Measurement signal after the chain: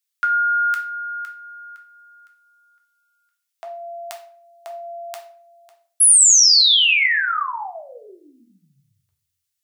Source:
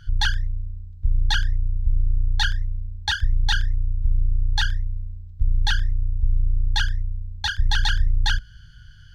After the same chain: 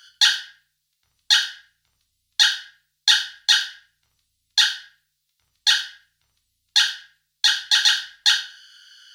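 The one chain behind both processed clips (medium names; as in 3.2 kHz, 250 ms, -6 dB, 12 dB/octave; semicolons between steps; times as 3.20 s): high-pass 1.1 kHz 12 dB/octave; tilt shelf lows -9.5 dB, about 1.5 kHz; simulated room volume 52 m³, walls mixed, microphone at 0.54 m; trim +2.5 dB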